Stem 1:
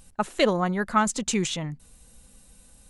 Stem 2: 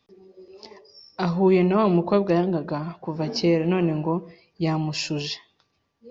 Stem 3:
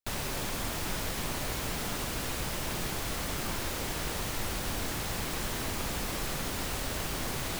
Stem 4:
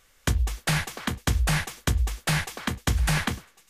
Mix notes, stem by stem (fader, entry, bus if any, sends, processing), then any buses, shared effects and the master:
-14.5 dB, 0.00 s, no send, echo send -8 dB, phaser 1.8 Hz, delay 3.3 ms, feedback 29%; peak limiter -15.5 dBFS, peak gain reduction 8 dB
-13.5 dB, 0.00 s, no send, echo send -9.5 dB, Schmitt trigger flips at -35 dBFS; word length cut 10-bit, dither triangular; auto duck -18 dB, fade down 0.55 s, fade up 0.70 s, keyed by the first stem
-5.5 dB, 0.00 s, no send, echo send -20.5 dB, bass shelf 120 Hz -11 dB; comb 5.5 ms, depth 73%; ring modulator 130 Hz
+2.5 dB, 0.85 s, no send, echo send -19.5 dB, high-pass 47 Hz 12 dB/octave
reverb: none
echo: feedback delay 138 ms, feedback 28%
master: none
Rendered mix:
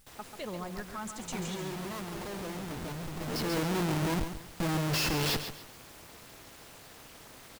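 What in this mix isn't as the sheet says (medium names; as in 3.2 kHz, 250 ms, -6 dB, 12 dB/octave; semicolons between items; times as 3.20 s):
stem 2 -13.5 dB -> -5.5 dB; stem 3 -5.5 dB -> -14.5 dB; stem 4: muted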